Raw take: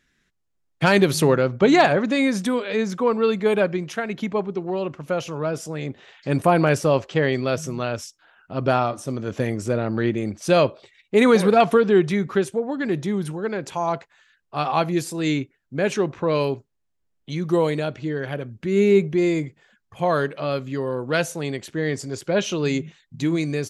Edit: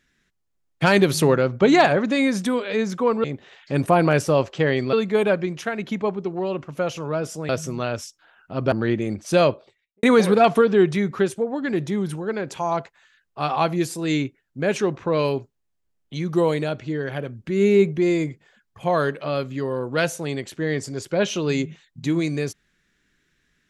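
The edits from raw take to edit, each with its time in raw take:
5.80–7.49 s: move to 3.24 s
8.72–9.88 s: delete
10.54–11.19 s: studio fade out

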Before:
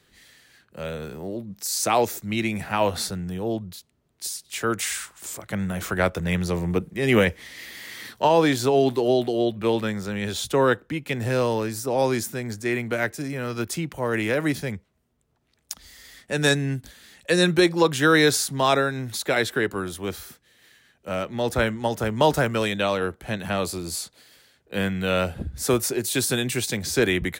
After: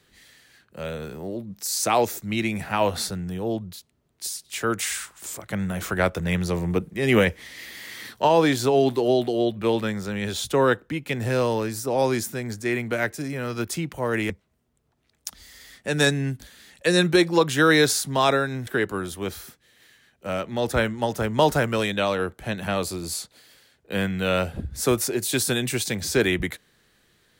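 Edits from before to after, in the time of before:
14.30–14.74 s: delete
19.11–19.49 s: delete

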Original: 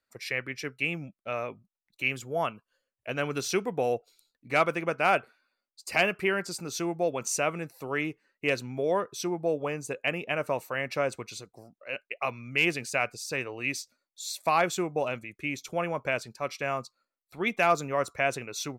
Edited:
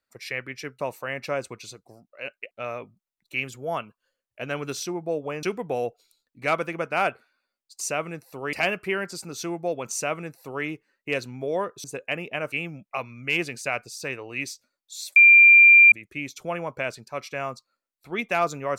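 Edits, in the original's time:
0.80–1.19 s: swap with 10.48–12.19 s
7.29–8.01 s: copy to 5.89 s
9.20–9.80 s: move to 3.51 s
14.44–15.20 s: bleep 2.38 kHz -8.5 dBFS

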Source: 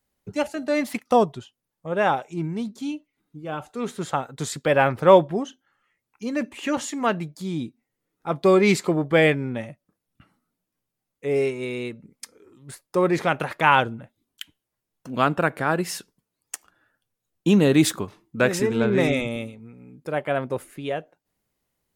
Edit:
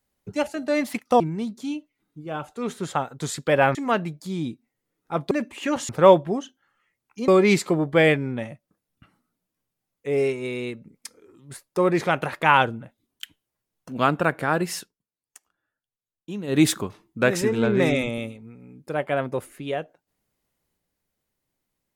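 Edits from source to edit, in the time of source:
1.20–2.38 s: delete
4.93–6.32 s: swap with 6.90–8.46 s
15.96–17.78 s: dip -15.5 dB, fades 0.13 s

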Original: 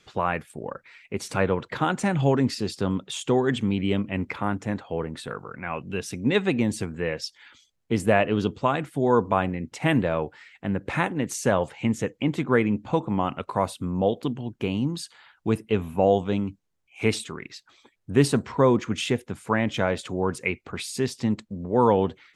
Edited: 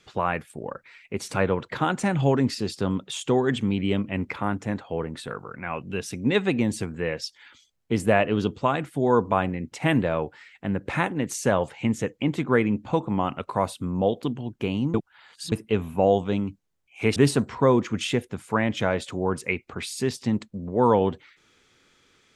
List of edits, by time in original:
14.94–15.52 s: reverse
17.16–18.13 s: delete

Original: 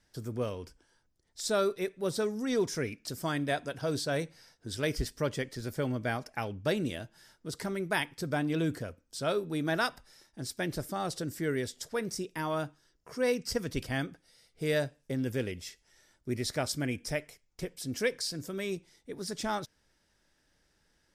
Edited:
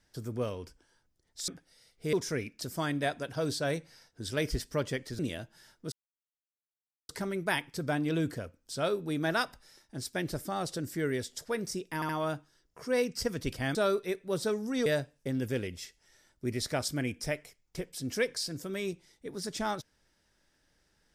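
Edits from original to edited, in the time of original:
1.48–2.59 s: swap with 14.05–14.70 s
5.65–6.80 s: delete
7.53 s: insert silence 1.17 s
12.39 s: stutter 0.07 s, 3 plays

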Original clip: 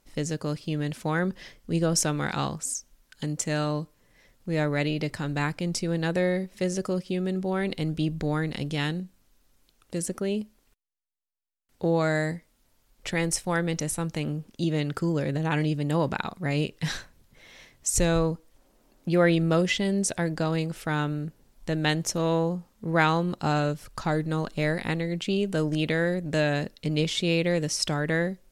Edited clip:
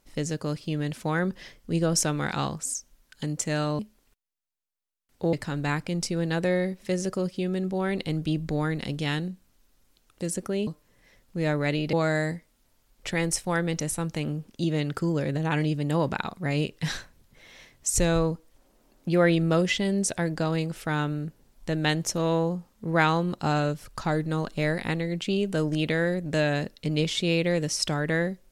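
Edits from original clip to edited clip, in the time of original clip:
3.79–5.05 s: swap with 10.39–11.93 s

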